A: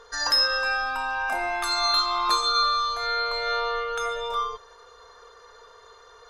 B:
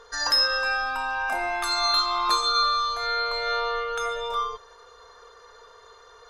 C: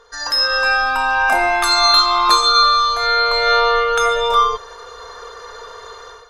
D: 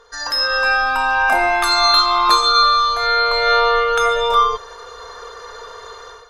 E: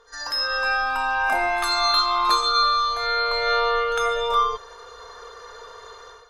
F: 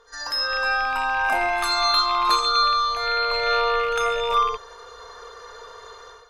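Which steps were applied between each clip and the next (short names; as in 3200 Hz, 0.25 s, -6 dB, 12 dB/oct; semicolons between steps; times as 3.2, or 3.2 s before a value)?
nothing audible
AGC gain up to 15 dB
dynamic EQ 7400 Hz, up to -4 dB, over -30 dBFS, Q 0.89
reverse echo 56 ms -17.5 dB; gain -6.5 dB
rattling part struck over -40 dBFS, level -24 dBFS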